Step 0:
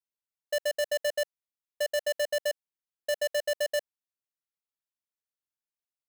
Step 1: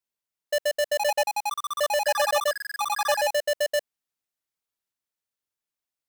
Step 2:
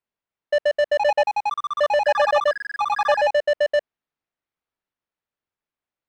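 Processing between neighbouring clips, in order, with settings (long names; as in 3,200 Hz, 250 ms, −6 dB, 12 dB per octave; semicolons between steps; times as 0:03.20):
delay with pitch and tempo change per echo 624 ms, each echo +6 semitones, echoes 3; level +4 dB
Bessel low-pass filter 2,000 Hz, order 2; level +6 dB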